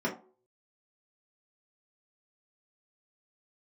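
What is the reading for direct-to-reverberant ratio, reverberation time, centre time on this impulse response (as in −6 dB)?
−6.0 dB, non-exponential decay, 18 ms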